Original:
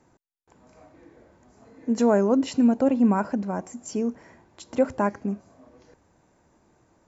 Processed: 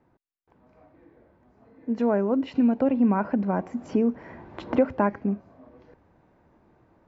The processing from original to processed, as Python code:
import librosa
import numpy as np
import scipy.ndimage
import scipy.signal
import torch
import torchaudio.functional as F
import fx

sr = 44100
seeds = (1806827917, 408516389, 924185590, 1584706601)

y = fx.dynamic_eq(x, sr, hz=2400.0, q=1.5, threshold_db=-45.0, ratio=4.0, max_db=4)
y = fx.rider(y, sr, range_db=3, speed_s=2.0)
y = fx.air_absorb(y, sr, metres=320.0)
y = fx.band_squash(y, sr, depth_pct=70, at=(2.55, 5.13))